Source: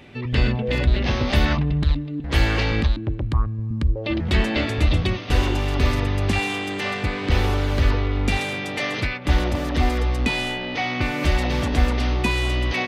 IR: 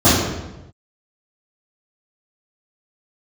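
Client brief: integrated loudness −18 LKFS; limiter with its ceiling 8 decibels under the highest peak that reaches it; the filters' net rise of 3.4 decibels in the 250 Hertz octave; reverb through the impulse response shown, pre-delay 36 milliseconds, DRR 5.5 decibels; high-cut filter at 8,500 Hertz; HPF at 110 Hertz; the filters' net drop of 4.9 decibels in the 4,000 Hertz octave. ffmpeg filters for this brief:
-filter_complex "[0:a]highpass=110,lowpass=8500,equalizer=frequency=250:width_type=o:gain=4.5,equalizer=frequency=4000:width_type=o:gain=-6.5,alimiter=limit=-15dB:level=0:latency=1,asplit=2[link_01][link_02];[1:a]atrim=start_sample=2205,adelay=36[link_03];[link_02][link_03]afir=irnorm=-1:irlink=0,volume=-32dB[link_04];[link_01][link_04]amix=inputs=2:normalize=0,volume=2.5dB"

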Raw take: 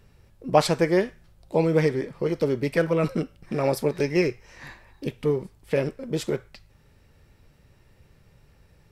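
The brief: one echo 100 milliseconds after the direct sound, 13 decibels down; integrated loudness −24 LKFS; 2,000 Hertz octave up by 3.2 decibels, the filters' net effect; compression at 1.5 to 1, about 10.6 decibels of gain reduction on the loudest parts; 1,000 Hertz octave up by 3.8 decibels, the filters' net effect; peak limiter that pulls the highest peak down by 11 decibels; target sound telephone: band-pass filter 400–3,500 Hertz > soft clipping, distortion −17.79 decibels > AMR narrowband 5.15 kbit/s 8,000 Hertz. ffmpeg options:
ffmpeg -i in.wav -af "equalizer=frequency=1000:width_type=o:gain=5,equalizer=frequency=2000:width_type=o:gain=3,acompressor=threshold=-41dB:ratio=1.5,alimiter=limit=-22.5dB:level=0:latency=1,highpass=400,lowpass=3500,aecho=1:1:100:0.224,asoftclip=threshold=-27.5dB,volume=17dB" -ar 8000 -c:a libopencore_amrnb -b:a 5150 out.amr

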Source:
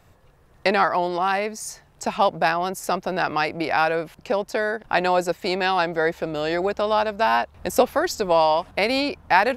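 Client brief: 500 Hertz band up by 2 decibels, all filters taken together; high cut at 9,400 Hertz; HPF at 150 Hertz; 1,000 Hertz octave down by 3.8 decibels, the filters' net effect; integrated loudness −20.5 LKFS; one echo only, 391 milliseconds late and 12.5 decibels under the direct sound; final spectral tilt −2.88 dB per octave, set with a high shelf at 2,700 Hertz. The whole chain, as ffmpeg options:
ffmpeg -i in.wav -af "highpass=150,lowpass=9400,equalizer=frequency=500:width_type=o:gain=5,equalizer=frequency=1000:width_type=o:gain=-7,highshelf=frequency=2700:gain=-5,aecho=1:1:391:0.237,volume=2.5dB" out.wav

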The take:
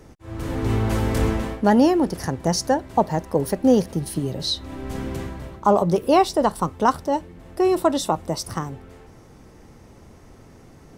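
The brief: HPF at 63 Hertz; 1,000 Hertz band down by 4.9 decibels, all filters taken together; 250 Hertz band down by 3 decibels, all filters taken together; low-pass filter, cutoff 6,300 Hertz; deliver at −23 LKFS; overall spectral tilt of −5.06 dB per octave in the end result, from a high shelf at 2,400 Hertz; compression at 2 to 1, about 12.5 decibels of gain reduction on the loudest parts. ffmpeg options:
ffmpeg -i in.wav -af "highpass=63,lowpass=6300,equalizer=frequency=250:width_type=o:gain=-3.5,equalizer=frequency=1000:width_type=o:gain=-7,highshelf=frequency=2400:gain=4.5,acompressor=threshold=-38dB:ratio=2,volume=12dB" out.wav

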